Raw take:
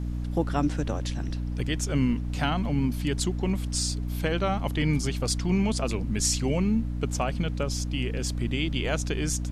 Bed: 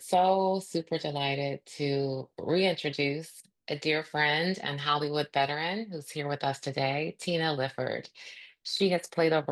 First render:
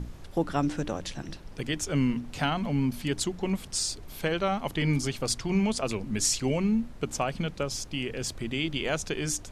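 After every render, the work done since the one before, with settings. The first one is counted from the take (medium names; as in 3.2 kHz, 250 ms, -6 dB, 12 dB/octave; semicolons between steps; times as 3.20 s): hum notches 60/120/180/240/300 Hz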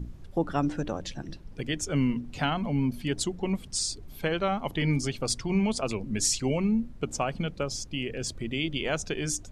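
noise reduction 10 dB, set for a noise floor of -44 dBFS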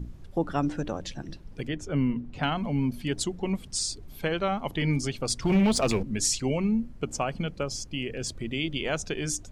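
1.68–2.43 s: low-pass 1.7 kHz 6 dB/octave; 5.42–6.03 s: waveshaping leveller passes 2; 6.78–8.16 s: band-stop 3.7 kHz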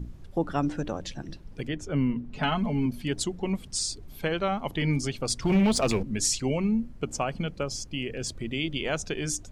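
2.30–2.86 s: comb 4.7 ms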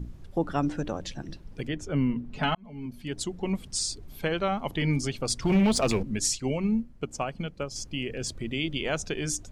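2.55–3.52 s: fade in; 6.19–7.76 s: upward expansion, over -37 dBFS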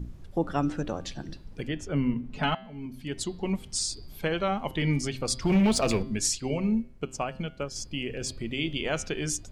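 de-hum 130.5 Hz, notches 38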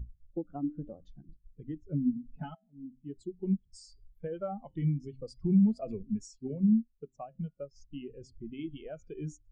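compression 20:1, threshold -27 dBFS, peak gain reduction 9 dB; spectral contrast expander 2.5:1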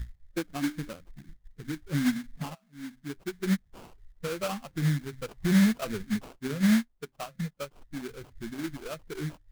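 in parallel at -4 dB: saturation -27 dBFS, distortion -9 dB; on the sum: sample-rate reducer 1.9 kHz, jitter 20%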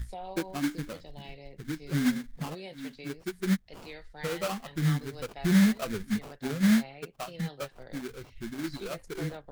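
add bed -17.5 dB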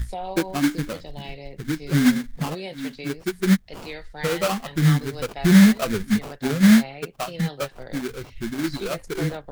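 trim +9 dB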